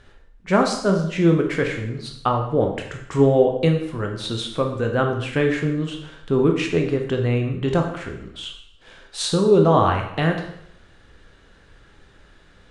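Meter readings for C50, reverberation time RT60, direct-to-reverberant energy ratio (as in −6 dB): 6.0 dB, 0.70 s, 2.5 dB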